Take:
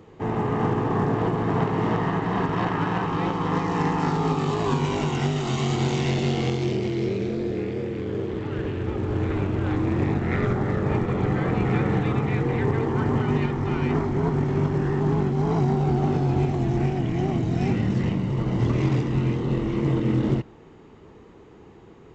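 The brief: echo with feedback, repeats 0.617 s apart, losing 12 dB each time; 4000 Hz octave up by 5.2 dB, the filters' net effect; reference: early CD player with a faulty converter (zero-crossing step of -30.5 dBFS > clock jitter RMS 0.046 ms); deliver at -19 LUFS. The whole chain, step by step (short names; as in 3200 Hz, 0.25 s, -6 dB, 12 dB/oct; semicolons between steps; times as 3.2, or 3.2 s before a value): bell 4000 Hz +7 dB; feedback echo 0.617 s, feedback 25%, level -12 dB; zero-crossing step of -30.5 dBFS; clock jitter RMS 0.046 ms; gain +3.5 dB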